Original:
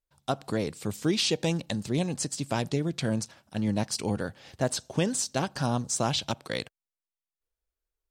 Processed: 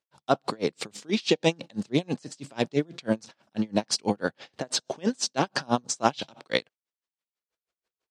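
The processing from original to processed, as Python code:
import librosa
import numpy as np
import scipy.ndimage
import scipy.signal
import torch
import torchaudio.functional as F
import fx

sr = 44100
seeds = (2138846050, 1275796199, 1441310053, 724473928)

p1 = fx.level_steps(x, sr, step_db=22)
p2 = x + (p1 * 10.0 ** (2.0 / 20.0))
p3 = fx.bandpass_edges(p2, sr, low_hz=220.0, high_hz=5600.0)
p4 = p3 * 10.0 ** (-33 * (0.5 - 0.5 * np.cos(2.0 * np.pi * 6.1 * np.arange(len(p3)) / sr)) / 20.0)
y = p4 * 10.0 ** (8.5 / 20.0)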